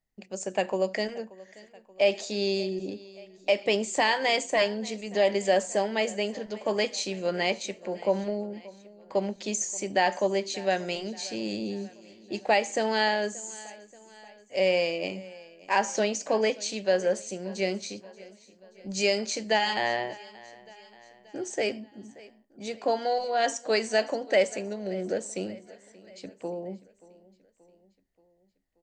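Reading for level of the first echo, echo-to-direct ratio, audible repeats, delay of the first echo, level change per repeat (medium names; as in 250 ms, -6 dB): -21.0 dB, -19.5 dB, 3, 580 ms, -5.0 dB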